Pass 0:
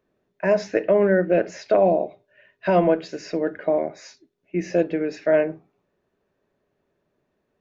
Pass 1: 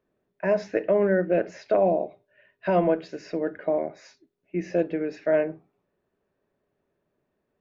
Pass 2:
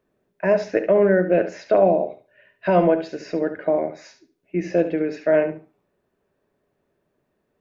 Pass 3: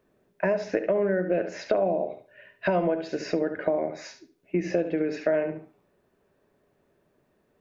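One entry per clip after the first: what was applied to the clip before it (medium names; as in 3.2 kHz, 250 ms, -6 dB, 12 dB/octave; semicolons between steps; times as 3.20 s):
treble shelf 5.6 kHz -10.5 dB; trim -3.5 dB
thinning echo 71 ms, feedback 21%, high-pass 150 Hz, level -11 dB; trim +4.5 dB
compression 5:1, threshold -26 dBFS, peak gain reduction 13 dB; trim +3.5 dB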